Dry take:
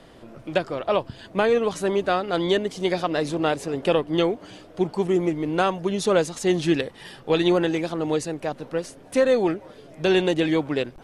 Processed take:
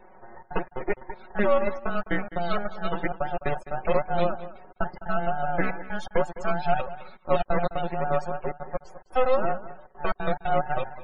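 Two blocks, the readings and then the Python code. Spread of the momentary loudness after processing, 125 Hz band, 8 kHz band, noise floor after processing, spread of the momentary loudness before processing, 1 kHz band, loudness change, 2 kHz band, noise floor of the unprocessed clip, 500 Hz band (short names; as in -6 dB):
11 LU, -4.0 dB, under -20 dB, -59 dBFS, 10 LU, +1.0 dB, -5.0 dB, -2.5 dB, -48 dBFS, -5.5 dB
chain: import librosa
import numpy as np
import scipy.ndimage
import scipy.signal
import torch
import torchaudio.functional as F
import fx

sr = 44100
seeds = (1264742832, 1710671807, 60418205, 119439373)

y = fx.band_invert(x, sr, width_hz=1000)
y = fx.low_shelf(y, sr, hz=81.0, db=-10.5)
y = np.maximum(y, 0.0)
y = fx.step_gate(y, sr, bpm=178, pattern='xxxxx.xx.xx.xxxx', floor_db=-60.0, edge_ms=4.5)
y = fx.high_shelf(y, sr, hz=3300.0, db=-10.5)
y = y + 0.65 * np.pad(y, (int(5.4 * sr / 1000.0), 0))[:len(y)]
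y = y + 10.0 ** (-15.5 / 20.0) * np.pad(y, (int(208 * sr / 1000.0), 0))[:len(y)]
y = fx.spec_topn(y, sr, count=64)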